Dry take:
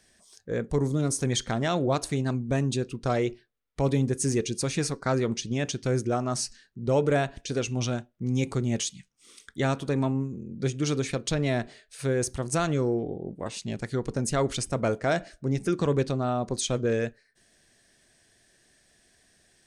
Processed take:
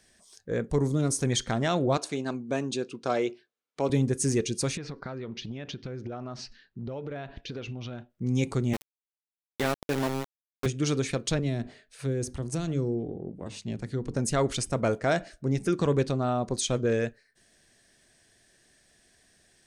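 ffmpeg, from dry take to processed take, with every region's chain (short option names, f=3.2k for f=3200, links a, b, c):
-filter_complex "[0:a]asettb=1/sr,asplit=3[a][b][c];[a]atrim=end=1.974[d];[b]atrim=start=1.97:end=3.9,asetpts=PTS-STARTPTS,afade=t=in:d=0.004:c=qsin,afade=t=out:st=1.926:d=0.004:c=qsin,highpass=260,lowpass=7.8k,bandreject=f=1.9k:w=13[e];[c]atrim=start=3.896[f];[d][e]acrossfade=d=0.004:c1=hsin:c2=qsin[g];[g][f]acrossfade=d=0.004:c1=qsin:c2=hsin,asettb=1/sr,asplit=3[h][i][j];[h]atrim=end=4.774[k];[i]atrim=start=4.77:end=8.1,asetpts=PTS-STARTPTS,afade=t=in:d=0.004:c=qsin,afade=t=out:st=3.326:d=0.004:c=qsin,lowpass=f=4.2k:w=0.5412,lowpass=f=4.2k:w=1.3066,acompressor=threshold=-32dB:ratio=16:attack=3.2:release=140:knee=1:detection=peak[l];[j]atrim=start=8.096[m];[k][l]acrossfade=d=0.004:c1=hsin:c2=qsin[n];[n][m]acrossfade=d=0.004:c1=qsin:c2=hsin,asettb=1/sr,asplit=3[o][p][q];[o]atrim=end=8.734[r];[p]atrim=start=8.73:end=10.66,asetpts=PTS-STARTPTS,afade=t=in:d=0.004:c=qsin,afade=t=out:st=1.926:d=0.004:c=qsin,highpass=180,lowpass=3.5k,aeval=exprs='val(0)*gte(abs(val(0)),0.0447)':c=same[s];[q]atrim=start=10.656[t];[r][s]acrossfade=d=0.004:c1=hsin:c2=qsin[u];[u][t]acrossfade=d=0.004:c1=qsin:c2=hsin,asettb=1/sr,asplit=3[v][w][x];[v]atrim=end=11.394[y];[w]atrim=start=11.39:end=14.15,asetpts=PTS-STARTPTS,afade=t=in:d=0.004:c=qsin,afade=t=out:st=2.756:d=0.004:c=qsin,highshelf=f=3.4k:g=-8,bandreject=f=50:t=h:w=6,bandreject=f=100:t=h:w=6,bandreject=f=150:t=h:w=6,bandreject=f=200:t=h:w=6,bandreject=f=250:t=h:w=6,bandreject=f=300:t=h:w=6,acrossover=split=390|3000[z][aa][ab];[aa]acompressor=threshold=-43dB:ratio=4:attack=3.2:release=140:knee=2.83:detection=peak[ac];[z][ac][ab]amix=inputs=3:normalize=0[ad];[x]atrim=start=14.146[ae];[y][ad]acrossfade=d=0.004:c1=hsin:c2=qsin[af];[af][ae]acrossfade=d=0.004:c1=qsin:c2=hsin"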